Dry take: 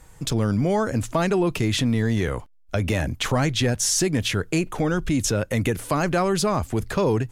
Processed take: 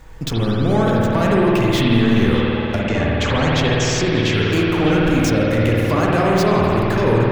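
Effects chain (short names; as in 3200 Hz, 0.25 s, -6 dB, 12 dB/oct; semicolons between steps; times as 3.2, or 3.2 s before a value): median filter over 5 samples; in parallel at 0 dB: compressor, threshold -29 dBFS, peak gain reduction 11 dB; 2.79–4.34 on the sum: Chebyshev low-pass 7900 Hz, order 8; soft clip -13.5 dBFS, distortion -18 dB; on a send: delay with a stepping band-pass 0.608 s, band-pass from 2500 Hz, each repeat -0.7 oct, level -5.5 dB; on the sum: spring tank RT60 3.2 s, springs 52 ms, chirp 35 ms, DRR -4.5 dB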